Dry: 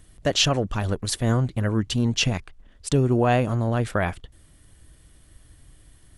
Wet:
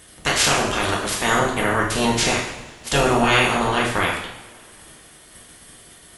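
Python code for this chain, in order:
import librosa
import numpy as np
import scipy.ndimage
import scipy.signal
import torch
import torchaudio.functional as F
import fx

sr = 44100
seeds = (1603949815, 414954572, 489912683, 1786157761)

y = fx.spec_clip(x, sr, under_db=28)
y = fx.rev_double_slope(y, sr, seeds[0], early_s=0.79, late_s=3.2, knee_db=-22, drr_db=-3.0)
y = y * librosa.db_to_amplitude(-1.0)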